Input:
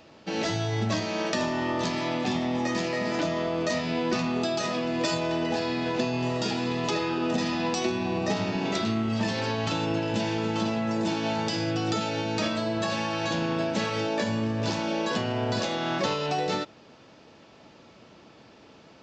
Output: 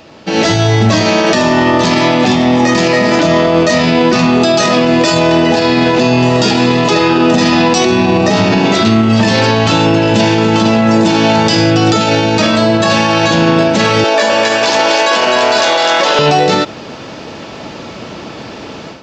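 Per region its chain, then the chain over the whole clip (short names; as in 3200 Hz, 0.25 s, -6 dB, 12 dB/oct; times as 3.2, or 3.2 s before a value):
14.04–16.19 HPF 520 Hz + split-band echo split 1100 Hz, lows 0.101 s, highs 0.255 s, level -3 dB
whole clip: AGC gain up to 11.5 dB; maximiser +14.5 dB; gain -1 dB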